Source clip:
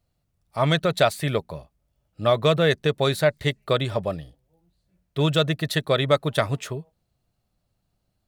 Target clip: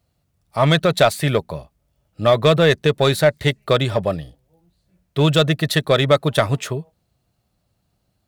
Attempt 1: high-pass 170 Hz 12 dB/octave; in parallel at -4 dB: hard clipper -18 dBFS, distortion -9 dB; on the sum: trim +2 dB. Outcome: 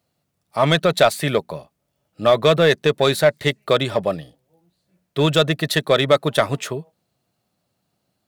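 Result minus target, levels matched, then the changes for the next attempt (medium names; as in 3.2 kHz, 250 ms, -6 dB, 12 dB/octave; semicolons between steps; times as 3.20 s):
125 Hz band -4.0 dB
change: high-pass 47 Hz 12 dB/octave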